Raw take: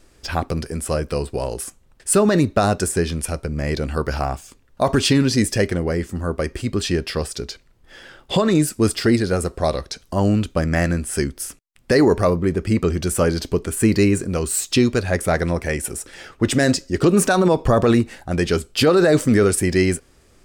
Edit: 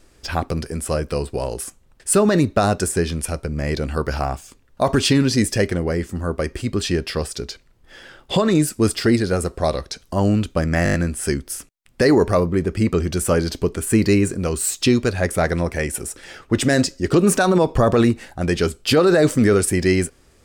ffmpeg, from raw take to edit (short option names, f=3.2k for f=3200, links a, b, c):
-filter_complex "[0:a]asplit=6[a][b][c][d][e][f];[a]atrim=end=10.862[g];[b]atrim=start=10.838:end=10.862[h];[c]atrim=start=10.838:end=10.862[i];[d]atrim=start=10.838:end=10.862[j];[e]atrim=start=10.838:end=10.862[k];[f]atrim=start=10.838[l];[g][h]acrossfade=d=0.004:c1=hsin:c2=hsin[m];[m][i]acrossfade=d=0.004:c1=hsin:c2=hsin[n];[n][j]acrossfade=d=0.004:c1=hsin:c2=hsin[o];[o][k]acrossfade=d=0.004:c1=hsin:c2=hsin[p];[p][l]acrossfade=d=0.004:c1=hsin:c2=hsin"